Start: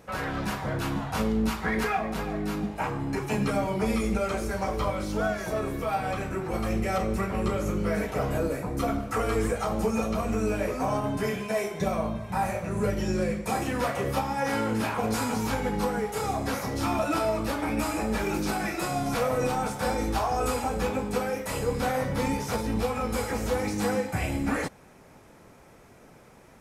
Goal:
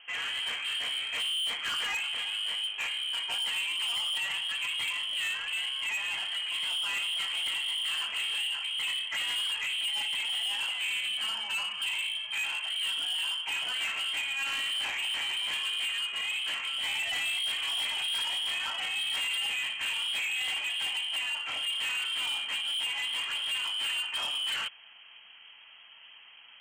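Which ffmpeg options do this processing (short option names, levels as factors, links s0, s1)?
-filter_complex "[0:a]asettb=1/sr,asplit=3[s0][s1][s2];[s0]atrim=end=17.054[s3];[s1]atrim=start=17.05:end=19.36,asetpts=PTS-STARTPTS,afade=t=in:d=0.004:c=qsin,afade=t=out:st=2.306:d=0.004:c=qsin,lowshelf=f=130:t=q:w=3:g=6.5[s4];[s2]atrim=start=19.356[s5];[s3][s4]acrossfade=d=0.004:c1=hsin:c2=qsin[s6];[s6][s5]acrossfade=d=0.004:c1=qsin:c2=hsin,lowpass=f=2800:t=q:w=0.5098,lowpass=f=2800:t=q:w=0.6013,lowpass=f=2800:t=q:w=0.9,lowpass=f=2800:t=q:w=2.563,afreqshift=-3300,asoftclip=type=tanh:threshold=0.0376"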